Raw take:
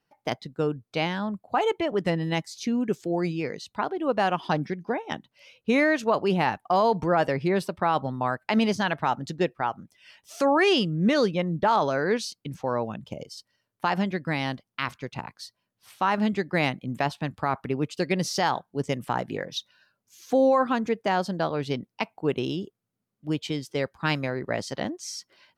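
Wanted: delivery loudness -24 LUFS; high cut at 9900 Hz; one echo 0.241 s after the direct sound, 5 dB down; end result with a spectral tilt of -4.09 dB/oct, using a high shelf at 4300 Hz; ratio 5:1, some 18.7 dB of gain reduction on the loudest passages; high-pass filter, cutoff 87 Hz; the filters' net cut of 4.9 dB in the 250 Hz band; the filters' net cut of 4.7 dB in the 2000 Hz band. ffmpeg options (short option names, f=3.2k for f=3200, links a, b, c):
-af "highpass=87,lowpass=9.9k,equalizer=f=250:t=o:g=-6.5,equalizer=f=2k:t=o:g=-7.5,highshelf=f=4.3k:g=8,acompressor=threshold=-41dB:ratio=5,aecho=1:1:241:0.562,volume=19dB"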